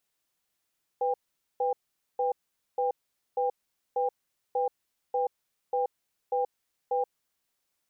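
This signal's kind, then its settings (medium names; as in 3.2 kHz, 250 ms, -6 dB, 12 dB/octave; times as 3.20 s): cadence 498 Hz, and 800 Hz, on 0.13 s, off 0.46 s, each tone -27 dBFS 6.15 s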